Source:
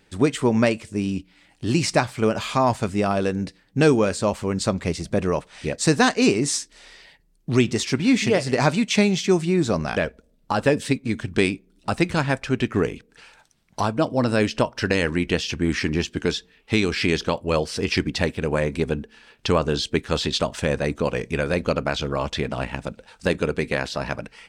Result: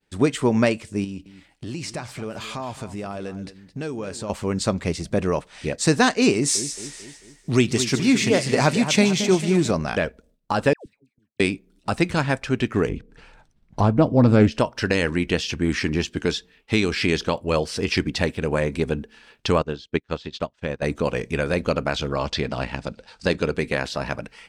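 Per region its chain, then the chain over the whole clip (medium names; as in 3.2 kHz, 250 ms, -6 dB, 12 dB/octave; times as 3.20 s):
1.04–4.30 s: compression 3:1, threshold -31 dBFS + delay 218 ms -14 dB
6.33–9.71 s: treble shelf 7.2 kHz +7.5 dB + two-band feedback delay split 2.2 kHz, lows 222 ms, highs 151 ms, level -10 dB
10.73–11.40 s: block-companded coder 7-bit + inverted gate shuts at -25 dBFS, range -36 dB + phase dispersion lows, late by 128 ms, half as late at 880 Hz
12.89–14.52 s: tilt EQ -3 dB/octave + loudspeaker Doppler distortion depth 0.17 ms
19.62–20.82 s: low-pass 5 kHz + careless resampling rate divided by 2×, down none, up filtered + upward expansion 2.5:1, over -38 dBFS
22.13–23.54 s: low-pass 7.9 kHz + peaking EQ 4.7 kHz +8 dB 0.42 oct
whole clip: de-esser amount 30%; expander -51 dBFS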